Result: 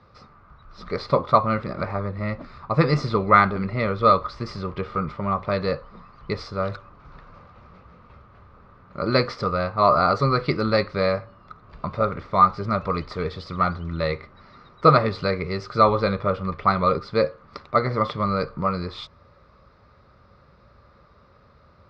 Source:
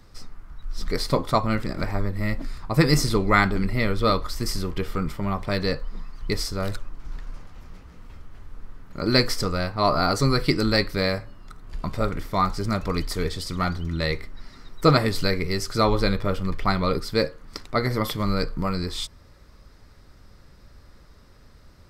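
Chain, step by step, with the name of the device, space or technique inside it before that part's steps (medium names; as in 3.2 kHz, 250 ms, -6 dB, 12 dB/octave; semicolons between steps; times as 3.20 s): guitar cabinet (cabinet simulation 77–3900 Hz, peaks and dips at 290 Hz -7 dB, 560 Hz +6 dB, 1.2 kHz +9 dB, 1.8 kHz -4 dB, 3.1 kHz -7 dB)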